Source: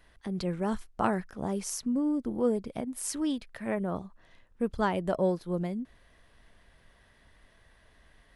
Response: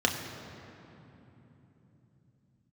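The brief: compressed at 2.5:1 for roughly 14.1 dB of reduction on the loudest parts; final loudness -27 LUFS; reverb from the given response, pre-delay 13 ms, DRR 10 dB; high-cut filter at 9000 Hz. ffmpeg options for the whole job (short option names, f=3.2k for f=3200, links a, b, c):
-filter_complex "[0:a]lowpass=9k,acompressor=threshold=-44dB:ratio=2.5,asplit=2[a][b];[1:a]atrim=start_sample=2205,adelay=13[c];[b][c]afir=irnorm=-1:irlink=0,volume=-21.5dB[d];[a][d]amix=inputs=2:normalize=0,volume=15dB"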